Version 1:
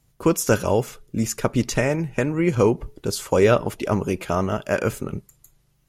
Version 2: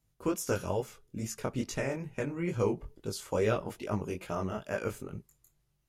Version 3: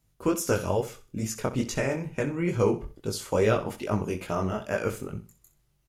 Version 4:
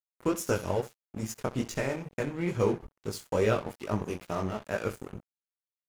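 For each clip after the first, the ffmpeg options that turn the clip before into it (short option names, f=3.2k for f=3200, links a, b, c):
-af "flanger=delay=18:depth=5.4:speed=2.3,volume=-9dB"
-af "aecho=1:1:64|128|192:0.211|0.0592|0.0166,volume=5.5dB"
-af "aeval=exprs='sgn(val(0))*max(abs(val(0))-0.0112,0)':c=same,volume=-2dB"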